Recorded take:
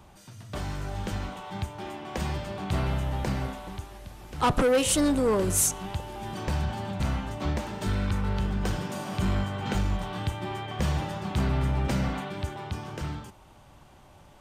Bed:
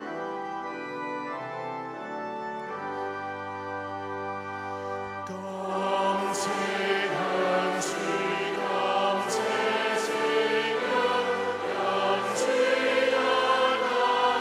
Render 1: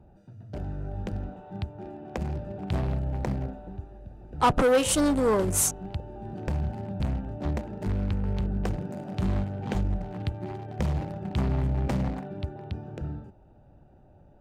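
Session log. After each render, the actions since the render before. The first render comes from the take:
adaptive Wiener filter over 41 samples
parametric band 870 Hz +4 dB 1.5 octaves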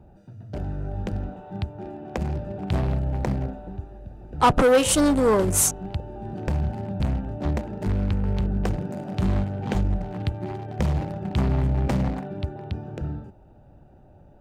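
level +4 dB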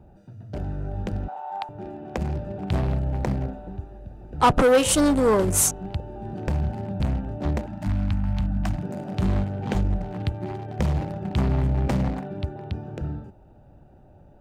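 0:01.28–0:01.69: high-pass with resonance 840 Hz, resonance Q 6.5
0:07.66–0:08.83: Chebyshev band-stop filter 310–620 Hz, order 3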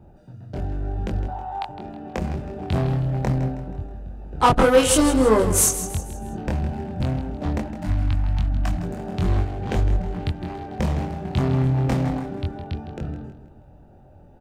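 double-tracking delay 23 ms −2 dB
repeating echo 160 ms, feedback 42%, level −12 dB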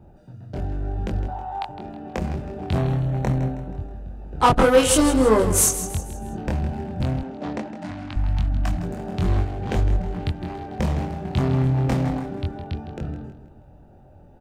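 0:02.78–0:03.69: Butterworth band-reject 4,900 Hz, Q 6.1
0:07.23–0:08.16: band-pass filter 210–6,700 Hz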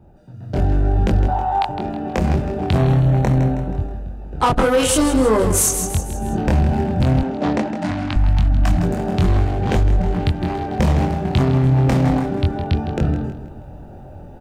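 automatic gain control gain up to 12 dB
brickwall limiter −8 dBFS, peak gain reduction 7 dB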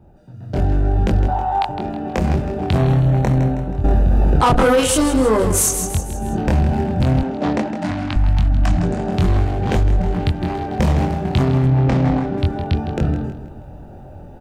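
0:03.84–0:04.80: envelope flattener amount 100%
0:08.66–0:09.13: low-pass filter 8,400 Hz 24 dB per octave
0:11.66–0:12.38: high-frequency loss of the air 99 metres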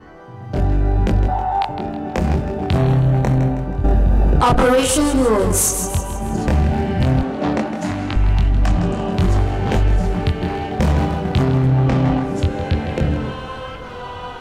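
mix in bed −7.5 dB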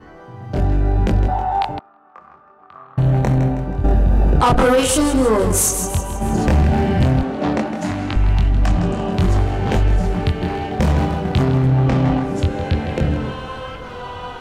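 0:01.79–0:02.98: resonant band-pass 1,200 Hz, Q 13
0:06.21–0:07.07: leveller curve on the samples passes 1

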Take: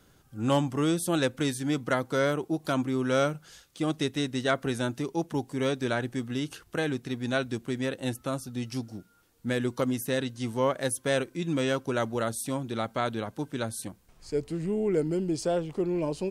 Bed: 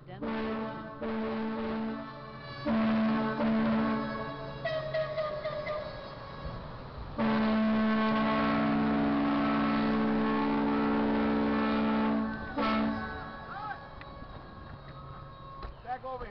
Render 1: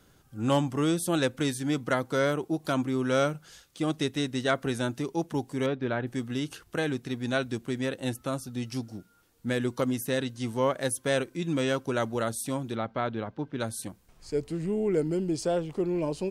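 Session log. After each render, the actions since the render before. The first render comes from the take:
0:05.66–0:06.07: high-frequency loss of the air 340 metres
0:12.75–0:13.60: high-frequency loss of the air 250 metres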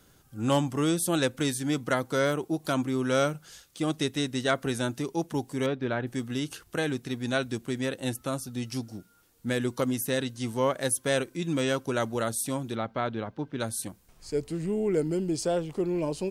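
high-shelf EQ 5,500 Hz +5.5 dB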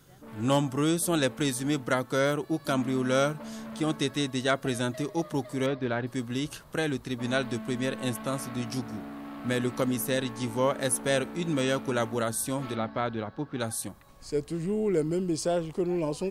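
mix in bed −12.5 dB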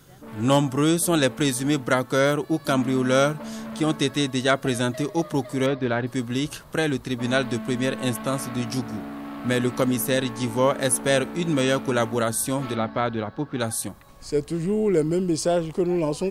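level +5.5 dB

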